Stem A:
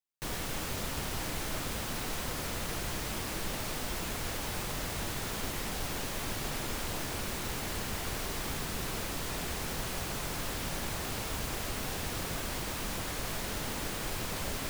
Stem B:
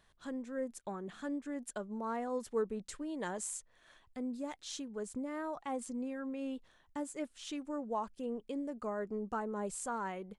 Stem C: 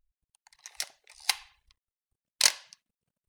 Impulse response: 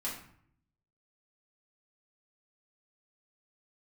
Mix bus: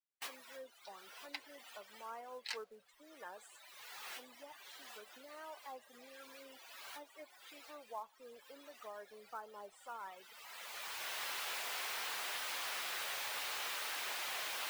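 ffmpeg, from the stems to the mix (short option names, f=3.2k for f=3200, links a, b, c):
-filter_complex "[0:a]highpass=350,aeval=exprs='0.0562*sin(PI/2*8.91*val(0)/0.0562)':c=same,volume=-5.5dB[a];[1:a]aeval=exprs='sgn(val(0))*max(abs(val(0))-0.00141,0)':c=same,volume=-6.5dB,asplit=2[b][c];[2:a]afwtdn=0.0112,equalizer=f=125:t=o:w=0.33:g=10,equalizer=f=630:t=o:w=0.33:g=-9,equalizer=f=6.3k:t=o:w=0.33:g=-6,equalizer=f=10k:t=o:w=0.33:g=-3,flanger=delay=2.5:depth=5.6:regen=-24:speed=1:shape=triangular,adelay=50,volume=-10.5dB,asplit=2[d][e];[e]volume=-23.5dB[f];[c]apad=whole_len=648002[g];[a][g]sidechaincompress=threshold=-53dB:ratio=6:attack=16:release=1250[h];[3:a]atrim=start_sample=2205[i];[f][i]afir=irnorm=-1:irlink=0[j];[h][b][d][j]amix=inputs=4:normalize=0,afftdn=nr=23:nf=-46,acrossover=split=520 4000:gain=0.0631 1 0.224[k][l][m];[k][l][m]amix=inputs=3:normalize=0,acrusher=bits=5:mode=log:mix=0:aa=0.000001"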